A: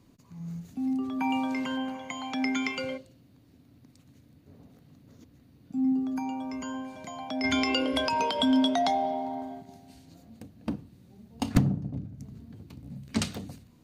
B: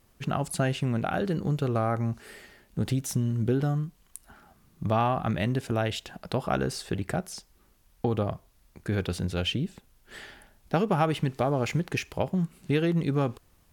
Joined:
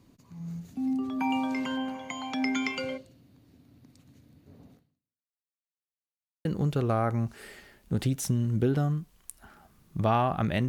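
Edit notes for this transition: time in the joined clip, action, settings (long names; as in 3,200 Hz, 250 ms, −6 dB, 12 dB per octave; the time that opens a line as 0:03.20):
A
0:04.73–0:05.55: fade out exponential
0:05.55–0:06.45: silence
0:06.45: continue with B from 0:01.31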